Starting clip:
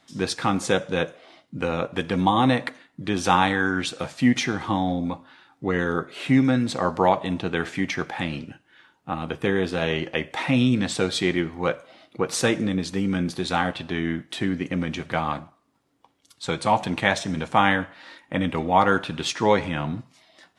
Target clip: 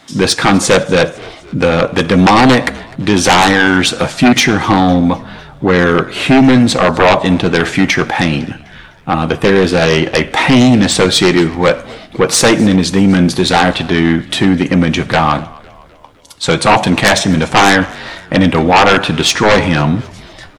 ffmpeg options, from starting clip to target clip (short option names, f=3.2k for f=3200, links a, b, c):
-filter_complex "[0:a]aeval=exprs='0.794*sin(PI/2*5.01*val(0)/0.794)':c=same,asplit=5[a][b][c][d][e];[b]adelay=253,afreqshift=-57,volume=-23dB[f];[c]adelay=506,afreqshift=-114,volume=-28.2dB[g];[d]adelay=759,afreqshift=-171,volume=-33.4dB[h];[e]adelay=1012,afreqshift=-228,volume=-38.6dB[i];[a][f][g][h][i]amix=inputs=5:normalize=0,volume=-1dB"